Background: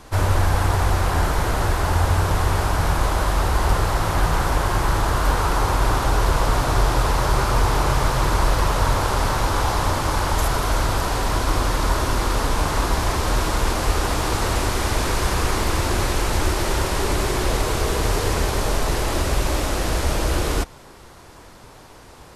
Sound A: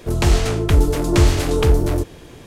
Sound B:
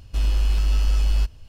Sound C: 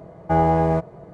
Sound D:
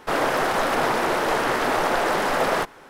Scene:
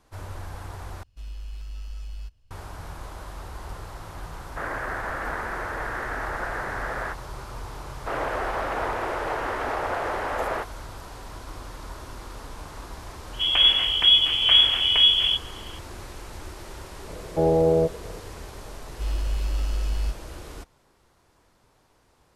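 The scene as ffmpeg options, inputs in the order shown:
ffmpeg -i bed.wav -i cue0.wav -i cue1.wav -i cue2.wav -i cue3.wav -filter_complex "[2:a]asplit=2[link_01][link_02];[4:a]asplit=2[link_03][link_04];[0:a]volume=-18.5dB[link_05];[link_01]equalizer=frequency=330:width=0.49:gain=-4[link_06];[link_03]lowpass=frequency=1700:width_type=q:width=3.1[link_07];[link_04]highpass=330,lowpass=2300[link_08];[1:a]lowpass=frequency=2900:width_type=q:width=0.5098,lowpass=frequency=2900:width_type=q:width=0.6013,lowpass=frequency=2900:width_type=q:width=0.9,lowpass=frequency=2900:width_type=q:width=2.563,afreqshift=-3400[link_09];[3:a]lowpass=frequency=500:width_type=q:width=4.1[link_10];[link_05]asplit=2[link_11][link_12];[link_11]atrim=end=1.034[link_13];[link_06]atrim=end=1.48,asetpts=PTS-STARTPTS,volume=-16.5dB[link_14];[link_12]atrim=start=2.506[link_15];[link_07]atrim=end=2.89,asetpts=PTS-STARTPTS,volume=-13.5dB,afade=type=in:duration=0.004:curve=hsin,afade=type=out:start_time=2.886:duration=0.004:curve=hsin,adelay=198009S[link_16];[link_08]atrim=end=2.89,asetpts=PTS-STARTPTS,volume=-5.5dB,afade=type=in:duration=0.004:curve=hsin,afade=type=out:start_time=2.886:duration=0.004:curve=hsin,adelay=7990[link_17];[link_09]atrim=end=2.46,asetpts=PTS-STARTPTS,volume=-4dB,afade=type=in:duration=0.004:curve=hsin,afade=type=out:start_time=2.456:duration=0.004:curve=hsin,adelay=13330[link_18];[link_10]atrim=end=1.13,asetpts=PTS-STARTPTS,volume=-6dB,afade=type=in:duration=0.004:curve=hsin,afade=type=out:start_time=1.126:duration=0.004:curve=hsin,adelay=17070[link_19];[link_02]atrim=end=1.48,asetpts=PTS-STARTPTS,volume=-6.5dB,afade=type=in:duration=0.004:curve=hsin,afade=type=out:start_time=1.476:duration=0.004:curve=hsin,adelay=18860[link_20];[link_13][link_14]acrossfade=duration=0.004:curve1=hsin:curve2=hsin[link_21];[link_21][link_15]acrossfade=duration=0.004:curve1=hsin:curve2=hsin[link_22];[link_22][link_16][link_17][link_18][link_19][link_20]amix=inputs=6:normalize=0" out.wav

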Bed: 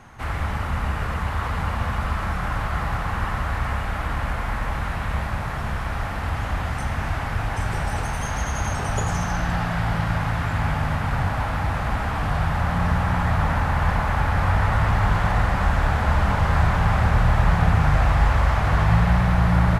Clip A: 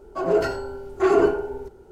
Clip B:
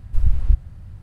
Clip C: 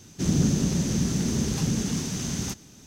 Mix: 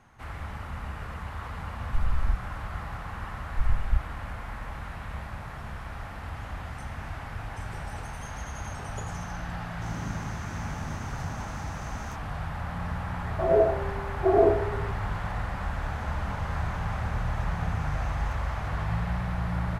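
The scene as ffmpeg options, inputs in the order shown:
ffmpeg -i bed.wav -i cue0.wav -i cue1.wav -i cue2.wav -filter_complex "[2:a]asplit=2[link_01][link_02];[3:a]asplit=2[link_03][link_04];[0:a]volume=-11.5dB[link_05];[link_01]alimiter=level_in=12dB:limit=-1dB:release=50:level=0:latency=1[link_06];[1:a]lowpass=frequency=670:width_type=q:width=4[link_07];[link_04]acompressor=threshold=-40dB:ratio=6:attack=3.2:release=140:knee=1:detection=peak[link_08];[link_06]atrim=end=1.02,asetpts=PTS-STARTPTS,volume=-15.5dB,afade=type=in:duration=0.004:curve=hsin,afade=type=out:start_time=1.016:duration=0.004:curve=hsin,adelay=1800[link_09];[link_02]atrim=end=1.02,asetpts=PTS-STARTPTS,volume=-8dB,afade=type=in:duration=0.004:curve=hsin,afade=type=out:start_time=1.016:duration=0.004:curve=hsin,adelay=3430[link_10];[link_03]atrim=end=2.86,asetpts=PTS-STARTPTS,volume=-17dB,afade=type=in:duration=0.004:curve=hsin,afade=type=out:start_time=2.856:duration=0.004:curve=hsin,adelay=424242S[link_11];[link_07]atrim=end=1.91,asetpts=PTS-STARTPTS,volume=-7.5dB,afade=type=in:duration=0.004:curve=hsin,afade=type=out:start_time=1.906:duration=0.004:curve=hsin,adelay=13230[link_12];[link_08]atrim=end=2.86,asetpts=PTS-STARTPTS,volume=-13dB,afade=type=in:duration=0.004:curve=hsin,afade=type=out:start_time=2.856:duration=0.004:curve=hsin,adelay=15820[link_13];[link_05][link_09][link_10][link_11][link_12][link_13]amix=inputs=6:normalize=0" out.wav

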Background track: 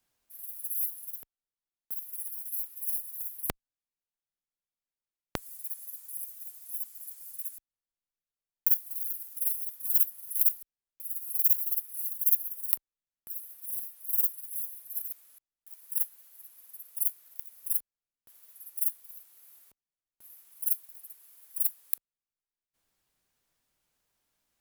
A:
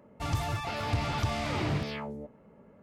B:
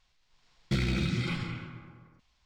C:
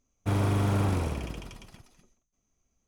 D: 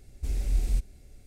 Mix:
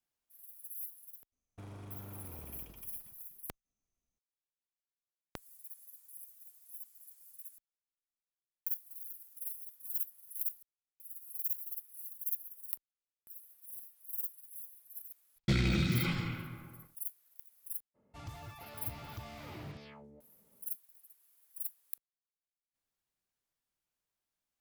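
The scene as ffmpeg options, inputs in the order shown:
ffmpeg -i bed.wav -i cue0.wav -i cue1.wav -i cue2.wav -filter_complex "[0:a]volume=-12dB[link_01];[3:a]acompressor=threshold=-30dB:ratio=6:attack=3.2:release=140:knee=1:detection=peak[link_02];[2:a]agate=range=-38dB:threshold=-59dB:ratio=16:release=100:detection=peak[link_03];[link_02]atrim=end=2.87,asetpts=PTS-STARTPTS,volume=-15dB,afade=type=in:duration=0.004:curve=hsin,afade=type=out:start_time=2.866:duration=0.004:curve=hsin,adelay=1320[link_04];[link_03]atrim=end=2.45,asetpts=PTS-STARTPTS,volume=-0.5dB,afade=type=in:duration=0.004:curve=hsin,afade=type=out:start_time=2.446:duration=0.004:curve=hsin,adelay=14770[link_05];[1:a]atrim=end=2.82,asetpts=PTS-STARTPTS,volume=-16dB,afade=type=in:duration=0.02,afade=type=out:start_time=2.8:duration=0.02,adelay=17940[link_06];[link_01][link_04][link_05][link_06]amix=inputs=4:normalize=0" out.wav

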